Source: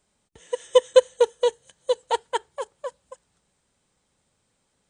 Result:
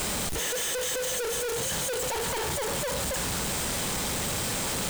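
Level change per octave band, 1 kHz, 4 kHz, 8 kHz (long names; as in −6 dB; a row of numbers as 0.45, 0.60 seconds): −3.0, +4.0, +15.0 decibels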